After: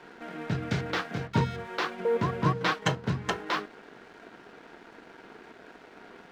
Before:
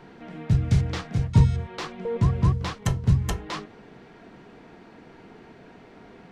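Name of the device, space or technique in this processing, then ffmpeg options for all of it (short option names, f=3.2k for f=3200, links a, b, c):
pocket radio on a weak battery: -filter_complex "[0:a]asettb=1/sr,asplit=3[a][b][c];[a]atrim=end=2.454[d];[b]atrim=start=2.45:end=2.95,asetpts=PTS-STARTPTS,afade=t=in:d=0.004:c=qsin,afade=t=out:st=0.496:d=0.004:c=qsin,aecho=1:1:6.4:0.91,atrim=end_sample=22050[e];[c]atrim=start=2.946[f];[d][e]acrossfade=d=0.004:c1=hsin:c2=qsin[g];[g][f]acrossfade=d=0.004:c1=qsin:c2=hsin,highpass=290,lowpass=4.2k,aeval=exprs='sgn(val(0))*max(abs(val(0))-0.00168,0)':c=same,equalizer=f=1.5k:t=o:w=0.31:g=6.5,volume=4dB"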